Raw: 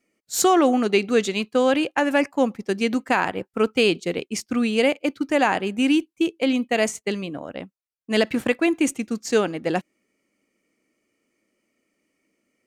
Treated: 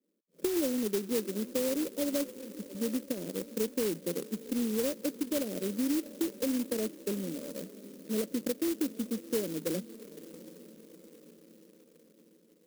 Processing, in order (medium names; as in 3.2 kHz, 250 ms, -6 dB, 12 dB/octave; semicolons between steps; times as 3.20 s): Chebyshev band-pass 160–590 Hz, order 5; compression 3:1, threshold -24 dBFS, peak gain reduction 8 dB; 1.71–2.75 s: slow attack 280 ms; on a send: echo that smears into a reverb 733 ms, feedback 55%, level -16 dB; on the sum: sampling jitter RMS 0.14 ms; trim -5 dB